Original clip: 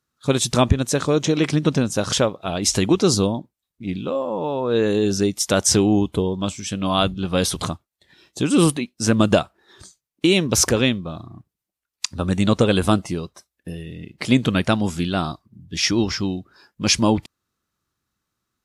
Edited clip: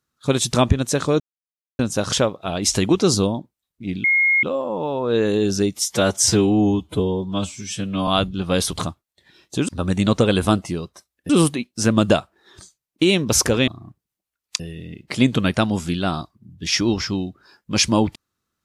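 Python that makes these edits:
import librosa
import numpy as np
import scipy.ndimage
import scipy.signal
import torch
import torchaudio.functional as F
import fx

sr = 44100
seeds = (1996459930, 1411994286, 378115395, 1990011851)

y = fx.edit(x, sr, fx.silence(start_s=1.2, length_s=0.59),
    fx.insert_tone(at_s=4.04, length_s=0.39, hz=2150.0, db=-13.5),
    fx.stretch_span(start_s=5.36, length_s=1.55, factor=1.5),
    fx.cut(start_s=10.9, length_s=0.27),
    fx.move(start_s=12.09, length_s=1.61, to_s=8.52), tone=tone)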